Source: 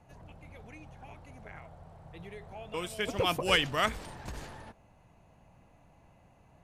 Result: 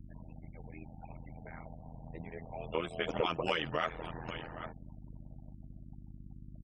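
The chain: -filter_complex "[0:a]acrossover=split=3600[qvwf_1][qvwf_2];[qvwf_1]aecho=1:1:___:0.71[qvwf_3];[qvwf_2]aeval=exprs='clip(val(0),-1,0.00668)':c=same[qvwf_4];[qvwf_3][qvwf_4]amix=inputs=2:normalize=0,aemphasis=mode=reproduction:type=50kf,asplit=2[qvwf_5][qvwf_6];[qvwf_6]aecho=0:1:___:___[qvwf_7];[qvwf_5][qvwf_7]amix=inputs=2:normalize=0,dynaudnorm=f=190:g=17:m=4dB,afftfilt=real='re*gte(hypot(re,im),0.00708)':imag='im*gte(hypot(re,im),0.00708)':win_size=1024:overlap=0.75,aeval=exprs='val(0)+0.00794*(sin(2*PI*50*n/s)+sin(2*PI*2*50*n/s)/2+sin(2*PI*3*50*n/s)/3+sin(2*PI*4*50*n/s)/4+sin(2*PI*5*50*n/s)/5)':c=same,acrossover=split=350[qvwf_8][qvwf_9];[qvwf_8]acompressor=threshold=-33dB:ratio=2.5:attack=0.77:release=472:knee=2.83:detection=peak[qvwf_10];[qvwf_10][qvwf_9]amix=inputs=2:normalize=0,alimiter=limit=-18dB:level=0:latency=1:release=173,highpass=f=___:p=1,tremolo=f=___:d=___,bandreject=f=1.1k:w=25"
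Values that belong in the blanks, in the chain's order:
6.4, 792, 0.119, 48, 82, 0.919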